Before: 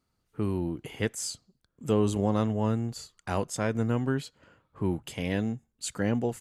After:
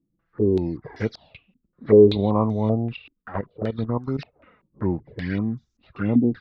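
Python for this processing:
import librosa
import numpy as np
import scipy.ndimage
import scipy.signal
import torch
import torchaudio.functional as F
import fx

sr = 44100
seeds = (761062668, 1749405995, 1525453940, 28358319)

y = fx.freq_compress(x, sr, knee_hz=1000.0, ratio=1.5)
y = fx.level_steps(y, sr, step_db=14, at=(2.96, 4.19))
y = fx.spec_box(y, sr, start_s=5.13, length_s=0.96, low_hz=390.0, high_hz=950.0, gain_db=-9)
y = fx.env_flanger(y, sr, rest_ms=6.1, full_db=-24.5)
y = fx.filter_held_lowpass(y, sr, hz=5.2, low_hz=280.0, high_hz=6100.0)
y = y * librosa.db_to_amplitude(5.0)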